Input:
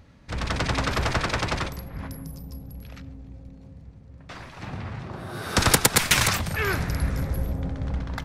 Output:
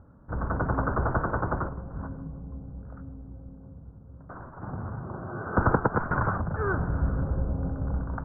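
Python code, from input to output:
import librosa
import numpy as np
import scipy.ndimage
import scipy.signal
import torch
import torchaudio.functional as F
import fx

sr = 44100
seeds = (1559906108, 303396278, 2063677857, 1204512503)

y = scipy.signal.sosfilt(scipy.signal.cheby1(6, 1.0, 1500.0, 'lowpass', fs=sr, output='sos'), x)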